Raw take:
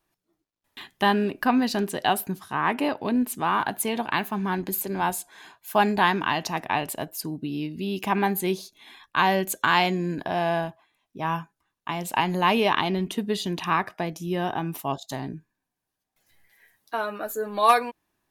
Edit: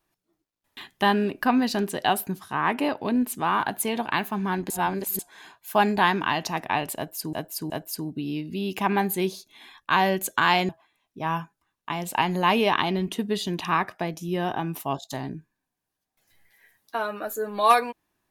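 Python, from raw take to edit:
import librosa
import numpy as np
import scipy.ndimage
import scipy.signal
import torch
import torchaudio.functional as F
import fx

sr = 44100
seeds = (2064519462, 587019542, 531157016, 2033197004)

y = fx.edit(x, sr, fx.reverse_span(start_s=4.7, length_s=0.49),
    fx.repeat(start_s=6.96, length_s=0.37, count=3),
    fx.cut(start_s=9.95, length_s=0.73), tone=tone)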